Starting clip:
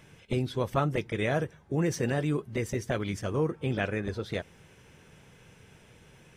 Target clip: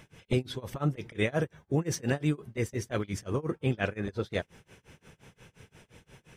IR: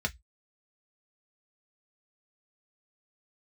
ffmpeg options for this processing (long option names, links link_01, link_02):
-af "tremolo=f=5.7:d=0.97,volume=3.5dB"